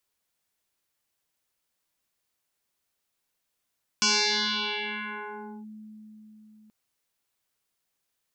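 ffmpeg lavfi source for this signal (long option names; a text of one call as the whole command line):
ffmpeg -f lavfi -i "aevalsrc='0.112*pow(10,-3*t/4.74)*sin(2*PI*215*t+10*clip(1-t/1.63,0,1)*sin(2*PI*2.93*215*t))':duration=2.68:sample_rate=44100" out.wav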